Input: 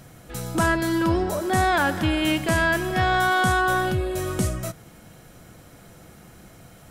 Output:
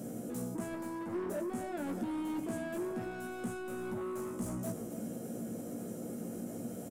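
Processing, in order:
high-pass filter 98 Hz 24 dB per octave
reversed playback
downward compressor 5 to 1, threshold −31 dBFS, peak gain reduction 13 dB
reversed playback
graphic EQ with 10 bands 125 Hz −5 dB, 250 Hz +7 dB, 500 Hz +9 dB, 1,000 Hz −8 dB, 2,000 Hz −9 dB, 4,000 Hz −11 dB, 8,000 Hz +4 dB
soft clipping −31.5 dBFS, distortion −10 dB
brickwall limiter −37.5 dBFS, peak gain reduction 6 dB
parametric band 230 Hz +8.5 dB 0.36 octaves
double-tracking delay 17 ms −4.5 dB
single-tap delay 274 ms −12.5 dB
level +1 dB

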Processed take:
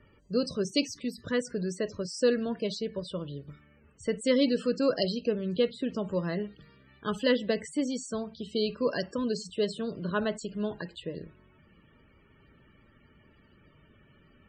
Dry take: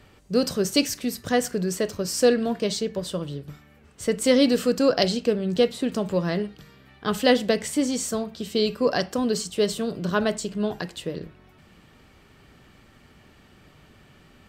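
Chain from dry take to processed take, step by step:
high-shelf EQ 2,500 Hz +2.5 dB
spectral peaks only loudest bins 64
Butterworth band-reject 750 Hz, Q 5.9
high-frequency loss of the air 67 metres
level −6 dB

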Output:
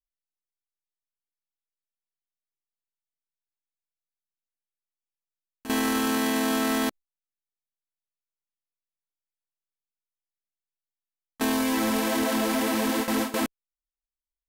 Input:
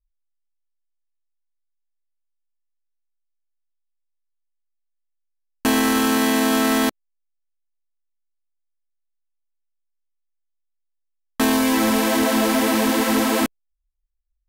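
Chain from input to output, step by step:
noise gate with hold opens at −11 dBFS
brickwall limiter −18 dBFS, peak gain reduction 7.5 dB

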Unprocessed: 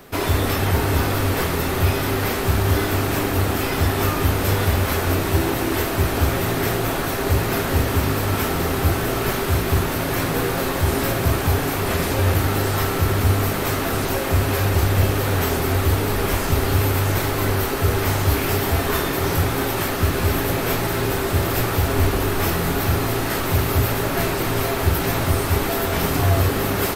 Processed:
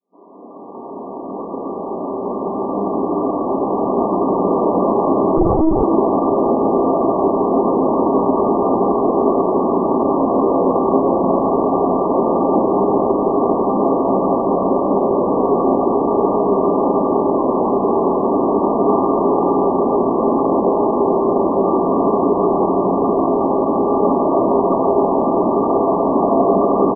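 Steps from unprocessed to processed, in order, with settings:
fade in at the beginning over 4.67 s
comb and all-pass reverb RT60 2 s, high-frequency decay 0.9×, pre-delay 115 ms, DRR −1 dB
brick-wall band-pass 180–1,200 Hz
on a send: echo with shifted repeats 158 ms, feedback 58%, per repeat −57 Hz, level −15 dB
0:05.37–0:05.83: on the sum: linear-prediction vocoder at 8 kHz pitch kept
level +6 dB

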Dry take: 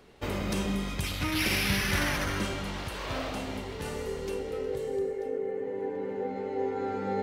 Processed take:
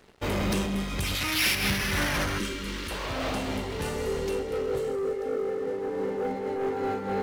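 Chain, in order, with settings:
leveller curve on the samples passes 3
0:01.15–0:01.55: tilt shelving filter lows −5.5 dB, about 1,100 Hz
0:02.38–0:02.91: phaser with its sweep stopped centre 300 Hz, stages 4
amplitude modulation by smooth noise, depth 60%
level −3.5 dB

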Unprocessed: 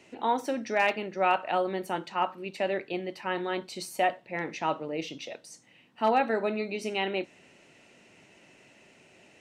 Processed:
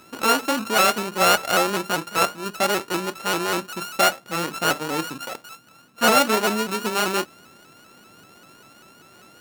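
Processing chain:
samples sorted by size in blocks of 32 samples
pitch modulation by a square or saw wave saw up 5.1 Hz, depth 100 cents
level +7.5 dB

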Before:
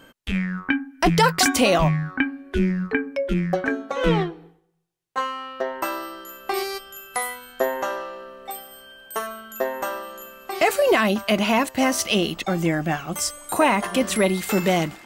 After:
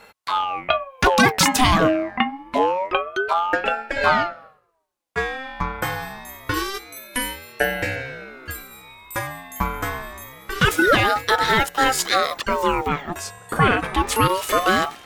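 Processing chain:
0:12.88–0:14.09: bass and treble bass −3 dB, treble −11 dB
ring modulator whose carrier an LFO sweeps 790 Hz, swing 40%, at 0.26 Hz
level +4.5 dB

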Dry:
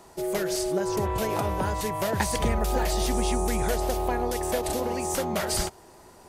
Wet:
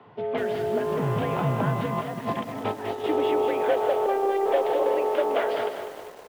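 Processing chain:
0:00.78–0:01.22: hard clipping −25 dBFS, distortion −23 dB
Chebyshev low-pass filter 3,200 Hz, order 4
echo with shifted repeats 160 ms, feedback 48%, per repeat −52 Hz, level −11.5 dB
frequency shifter +55 Hz
high-pass filter sweep 130 Hz → 460 Hz, 0:01.41–0:03.58
0:01.86–0:03.04: compressor whose output falls as the input rises −30 dBFS, ratio −0.5
0:04.06–0:04.46: phases set to zero 393 Hz
feedback echo at a low word length 198 ms, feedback 55%, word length 7 bits, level −9 dB

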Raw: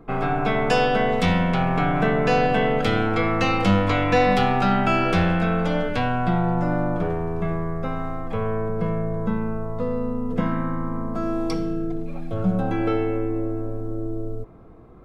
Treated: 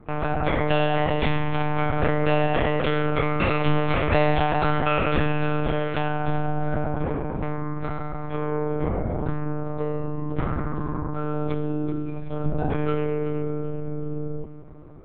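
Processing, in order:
delay that swaps between a low-pass and a high-pass 190 ms, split 920 Hz, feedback 67%, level −10.5 dB
one-pitch LPC vocoder at 8 kHz 150 Hz
level −2 dB

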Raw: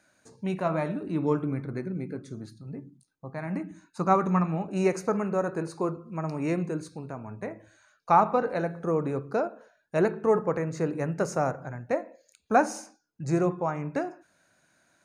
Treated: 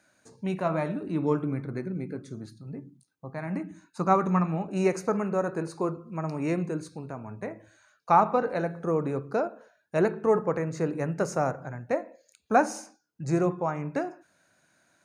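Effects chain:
high-pass filter 53 Hz

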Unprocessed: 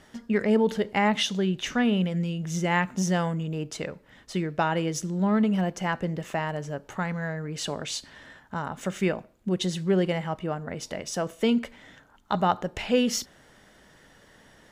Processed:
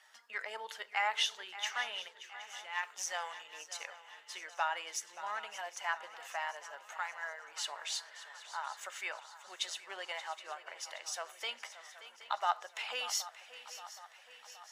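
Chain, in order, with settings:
spectral magnitudes quantised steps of 15 dB
0:02.08–0:02.83: noise gate −21 dBFS, range −11 dB
high-pass filter 840 Hz 24 dB per octave
feedback echo with a long and a short gap by turns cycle 771 ms, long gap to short 3 to 1, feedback 54%, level −14.5 dB
level −4.5 dB

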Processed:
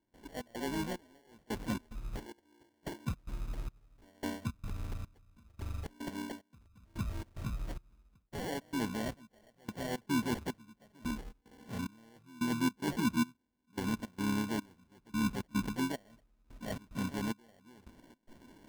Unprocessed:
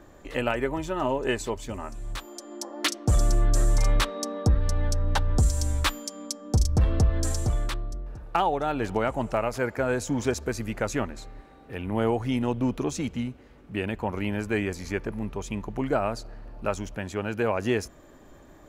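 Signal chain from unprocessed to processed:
reversed playback
downward compressor 16 to 1, threshold −31 dBFS, peak gain reduction 15 dB
reversed playback
noise reduction from a noise print of the clip's start 8 dB
soft clipping −25 dBFS, distortion −24 dB
pitch-shifted copies added +5 semitones −6 dB
dynamic equaliser 430 Hz, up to −3 dB, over −51 dBFS, Q 2.4
gate pattern ".xx.xxx..." 110 BPM −24 dB
parametric band 230 Hz +13.5 dB 1.1 octaves
decimation without filtering 35×
level −5 dB

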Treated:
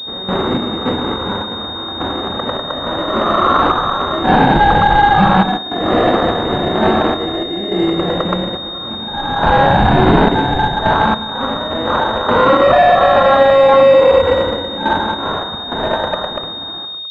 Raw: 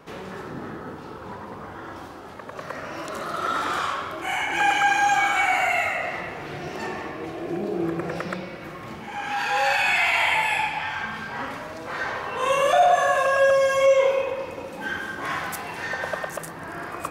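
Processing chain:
fade-out on the ending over 2.58 s
on a send at −16 dB: convolution reverb RT60 0.25 s, pre-delay 3 ms
on the sum: decimation without filtering 18×
0:13.56–0:14.22: gain on a spectral selection 450–1,300 Hz +6 dB
in parallel at −9 dB: soft clipping −23.5 dBFS, distortion −6 dB
0:05.57–0:06.31: on the sum: compressor whose output falls as the input rises −26 dBFS, ratio −0.5
sample-and-hold tremolo, depth 80%
boost into a limiter +19 dB
switching amplifier with a slow clock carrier 3,700 Hz
level −1.5 dB

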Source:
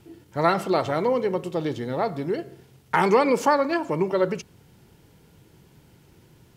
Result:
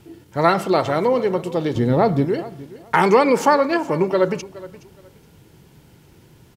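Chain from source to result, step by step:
0:01.75–0:02.25: low-shelf EQ 420 Hz +11 dB
repeating echo 419 ms, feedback 23%, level −18.5 dB
level +4.5 dB

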